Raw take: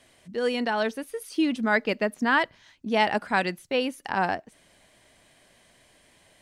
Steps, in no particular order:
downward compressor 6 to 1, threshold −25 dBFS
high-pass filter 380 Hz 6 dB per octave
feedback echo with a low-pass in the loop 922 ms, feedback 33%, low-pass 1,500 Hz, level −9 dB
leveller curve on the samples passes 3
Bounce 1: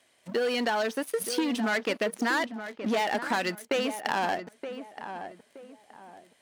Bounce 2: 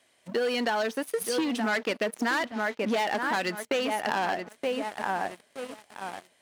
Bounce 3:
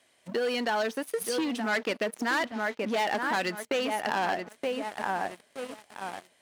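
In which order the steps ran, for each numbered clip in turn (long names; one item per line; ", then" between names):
leveller curve on the samples, then high-pass filter, then downward compressor, then feedback echo with a low-pass in the loop
feedback echo with a low-pass in the loop, then leveller curve on the samples, then high-pass filter, then downward compressor
feedback echo with a low-pass in the loop, then leveller curve on the samples, then downward compressor, then high-pass filter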